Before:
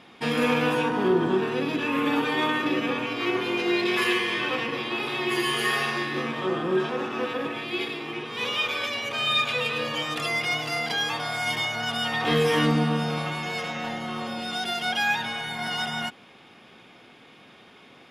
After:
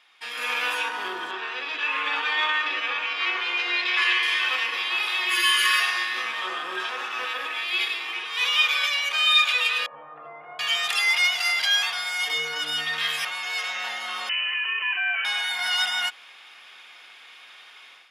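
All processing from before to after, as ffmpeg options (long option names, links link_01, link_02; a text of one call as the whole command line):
ffmpeg -i in.wav -filter_complex "[0:a]asettb=1/sr,asplit=3[link_01][link_02][link_03];[link_01]atrim=end=1.314[link_04];[link_02]atrim=start=1.31:end=4.23,asetpts=PTS-STARTPTS,afade=type=in:duration=0.004:curve=qsin,afade=type=out:start_time=2.916:duration=0.004:curve=qsin,highpass=140,lowpass=5300,bass=frequency=250:gain=-7,treble=frequency=4000:gain=-3[link_05];[link_03]atrim=start=4.226[link_06];[link_04][link_05]acrossfade=duration=0.004:curve1=hsin:curve2=qsin[link_07];[link_07][link_06]acrossfade=duration=0.004:curve1=qsin:curve2=hsin,asettb=1/sr,asplit=3[link_08][link_09][link_10];[link_08]atrim=end=5.334[link_11];[link_09]atrim=start=5.33:end=5.8,asetpts=PTS-STARTPTS,afade=type=in:duration=0.004:curve=qsin,afade=type=out:start_time=0.466:duration=0.004:curve=qsin,asuperstop=centerf=750:order=8:qfactor=2.2,aecho=1:1:3.5:0.71,atrim=end_sample=20727[link_12];[link_10]atrim=start=5.796[link_13];[link_11][link_12]acrossfade=duration=0.004:curve1=hsin:curve2=qsin[link_14];[link_14][link_13]acrossfade=duration=0.004:curve1=qsin:curve2=hsin,asettb=1/sr,asplit=3[link_15][link_16][link_17];[link_15]atrim=end=9.864[link_18];[link_16]atrim=start=9.86:end=13.25,asetpts=PTS-STARTPTS,afade=type=in:duration=0.004:curve=qsin,afade=type=out:start_time=3.386:duration=0.004:curve=qsin,highpass=47,equalizer=frequency=140:width=2.3:gain=11.5,acrossover=split=290|950[link_19][link_20][link_21];[link_19]adelay=50[link_22];[link_21]adelay=730[link_23];[link_22][link_20][link_23]amix=inputs=3:normalize=0,atrim=end_sample=149499[link_24];[link_17]atrim=start=13.246[link_25];[link_18][link_24]acrossfade=duration=0.004:curve1=hsin:curve2=qsin[link_26];[link_26][link_25]acrossfade=duration=0.004:curve1=qsin:curve2=hsin,asettb=1/sr,asplit=3[link_27][link_28][link_29];[link_27]atrim=end=14.294[link_30];[link_28]atrim=start=14.29:end=15.25,asetpts=PTS-STARTPTS,afade=type=in:duration=0.004:curve=qsin,afade=type=out:start_time=0.956:duration=0.004:curve=qsin,acompressor=threshold=-27dB:ratio=3:attack=3.2:release=140:knee=1:detection=peak,lowpass=frequency=2700:width_type=q:width=0.5098,lowpass=frequency=2700:width_type=q:width=0.6013,lowpass=frequency=2700:width_type=q:width=0.9,lowpass=frequency=2700:width_type=q:width=2.563,afreqshift=-3200[link_31];[link_29]atrim=start=15.246[link_32];[link_30][link_31]acrossfade=duration=0.004:curve1=hsin:curve2=qsin[link_33];[link_33][link_32]acrossfade=duration=0.004:curve1=qsin:curve2=hsin,dynaudnorm=framelen=320:gausssize=3:maxgain=11.5dB,highpass=1400,volume=-4dB" out.wav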